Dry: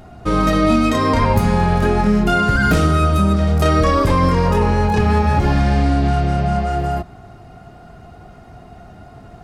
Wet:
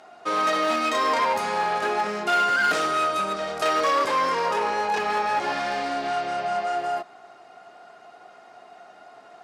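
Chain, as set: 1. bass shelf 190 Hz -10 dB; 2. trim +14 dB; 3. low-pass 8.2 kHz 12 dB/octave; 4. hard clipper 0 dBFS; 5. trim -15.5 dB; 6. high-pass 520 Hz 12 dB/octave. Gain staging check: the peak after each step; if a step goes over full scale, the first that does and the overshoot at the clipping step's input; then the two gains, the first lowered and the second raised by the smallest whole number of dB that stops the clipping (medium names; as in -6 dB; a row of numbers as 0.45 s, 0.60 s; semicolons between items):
-6.0 dBFS, +8.0 dBFS, +8.0 dBFS, 0.0 dBFS, -15.5 dBFS, -11.0 dBFS; step 2, 8.0 dB; step 2 +6 dB, step 5 -7.5 dB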